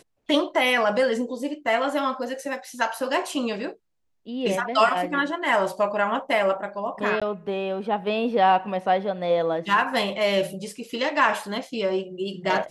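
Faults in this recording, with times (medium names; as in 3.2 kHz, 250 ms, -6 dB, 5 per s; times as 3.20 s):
7.20–7.22 s: dropout 16 ms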